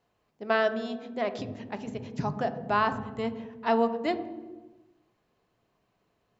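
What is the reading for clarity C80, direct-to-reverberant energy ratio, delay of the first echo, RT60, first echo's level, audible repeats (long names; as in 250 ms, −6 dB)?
13.5 dB, 8.5 dB, no echo audible, 1.2 s, no echo audible, no echo audible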